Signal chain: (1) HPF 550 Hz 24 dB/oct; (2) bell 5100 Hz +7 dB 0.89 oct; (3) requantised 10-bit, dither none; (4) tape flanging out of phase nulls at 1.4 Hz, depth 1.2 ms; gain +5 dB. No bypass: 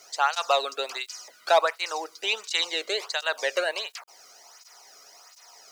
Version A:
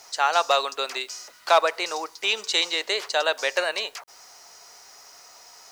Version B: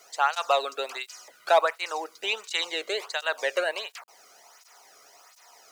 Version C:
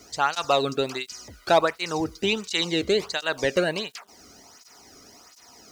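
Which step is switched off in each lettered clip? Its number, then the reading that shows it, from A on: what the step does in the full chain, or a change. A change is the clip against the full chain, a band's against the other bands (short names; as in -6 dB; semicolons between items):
4, loudness change +2.5 LU; 2, 8 kHz band -4.0 dB; 1, 250 Hz band +18.5 dB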